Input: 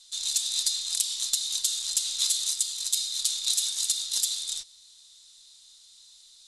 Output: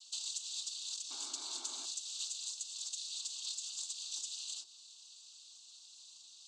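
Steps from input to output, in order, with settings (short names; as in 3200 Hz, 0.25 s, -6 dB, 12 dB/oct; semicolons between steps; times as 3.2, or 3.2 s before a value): compressor 6:1, threshold -36 dBFS, peak gain reduction 15 dB; noise vocoder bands 16; painted sound noise, 1.1–1.86, 240–2400 Hz -53 dBFS; fixed phaser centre 510 Hz, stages 6; on a send: reverb RT60 0.60 s, pre-delay 4 ms, DRR 11 dB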